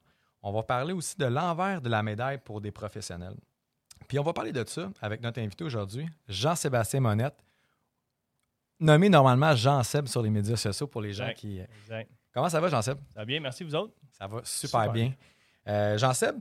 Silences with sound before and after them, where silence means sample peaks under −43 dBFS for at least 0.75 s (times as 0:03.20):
0:07.39–0:08.81